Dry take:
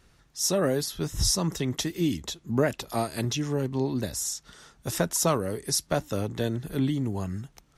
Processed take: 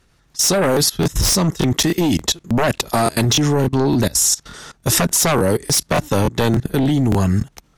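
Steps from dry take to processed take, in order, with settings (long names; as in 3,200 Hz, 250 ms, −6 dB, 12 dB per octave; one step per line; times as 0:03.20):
sine wavefolder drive 10 dB, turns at −10.5 dBFS
output level in coarse steps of 21 dB
regular buffer underruns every 0.29 s, samples 1,024, repeat, from 0:00.72
level +5.5 dB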